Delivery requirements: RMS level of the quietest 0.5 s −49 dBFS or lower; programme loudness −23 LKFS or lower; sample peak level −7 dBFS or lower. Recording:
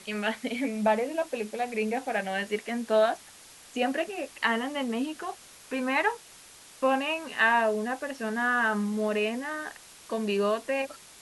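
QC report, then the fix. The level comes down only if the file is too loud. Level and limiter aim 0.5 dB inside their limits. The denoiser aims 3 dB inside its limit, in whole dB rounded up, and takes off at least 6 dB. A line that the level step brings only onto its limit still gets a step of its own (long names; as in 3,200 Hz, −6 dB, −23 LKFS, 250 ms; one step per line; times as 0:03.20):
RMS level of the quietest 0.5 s −51 dBFS: in spec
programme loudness −28.5 LKFS: in spec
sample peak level −12.0 dBFS: in spec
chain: no processing needed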